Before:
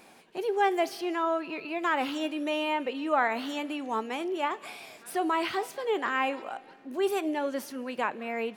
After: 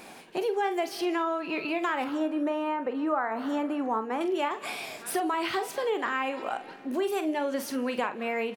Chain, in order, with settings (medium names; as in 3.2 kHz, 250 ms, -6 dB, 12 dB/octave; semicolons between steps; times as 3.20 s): 2.04–4.21 s: resonant high shelf 2 kHz -11 dB, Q 1.5; compression 5:1, threshold -34 dBFS, peak gain reduction 13.5 dB; doubling 45 ms -11 dB; trim +7.5 dB